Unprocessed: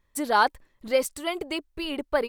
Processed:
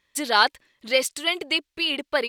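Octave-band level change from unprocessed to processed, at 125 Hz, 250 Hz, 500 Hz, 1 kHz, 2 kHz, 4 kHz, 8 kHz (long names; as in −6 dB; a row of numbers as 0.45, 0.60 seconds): can't be measured, −1.0 dB, −0.5 dB, 0.0 dB, +6.0 dB, +11.0 dB, +5.5 dB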